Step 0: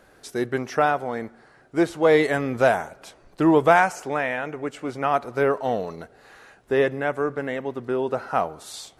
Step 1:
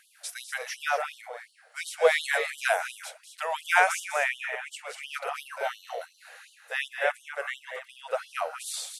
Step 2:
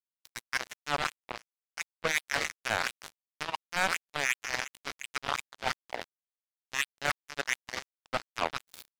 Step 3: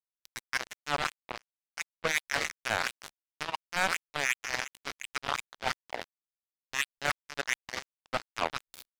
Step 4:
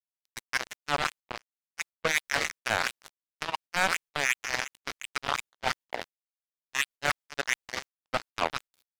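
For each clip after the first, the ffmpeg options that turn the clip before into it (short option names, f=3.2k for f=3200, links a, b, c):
-af "equalizer=f=1k:t=o:w=0.67:g=-6,equalizer=f=2.5k:t=o:w=0.67:g=4,equalizer=f=10k:t=o:w=0.67:g=8,aecho=1:1:198.3|239.1:0.282|0.355,afftfilt=real='re*gte(b*sr/1024,430*pow(2900/430,0.5+0.5*sin(2*PI*2.8*pts/sr)))':imag='im*gte(b*sr/1024,430*pow(2900/430,0.5+0.5*sin(2*PI*2.8*pts/sr)))':win_size=1024:overlap=0.75"
-af "equalizer=f=1k:t=o:w=1:g=11,equalizer=f=2k:t=o:w=1:g=7,equalizer=f=4k:t=o:w=1:g=4,equalizer=f=8k:t=o:w=1:g=-7,areverse,acompressor=threshold=-28dB:ratio=6,areverse,acrusher=bits=3:mix=0:aa=0.5,volume=1.5dB"
-af "anlmdn=0.000631"
-af "agate=range=-24dB:threshold=-45dB:ratio=16:detection=peak,volume=2.5dB"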